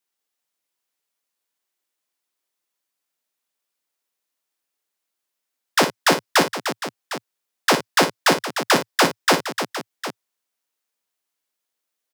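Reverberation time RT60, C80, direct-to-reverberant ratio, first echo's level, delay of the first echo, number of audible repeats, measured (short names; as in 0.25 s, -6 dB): none, none, none, -10.0 dB, 57 ms, 3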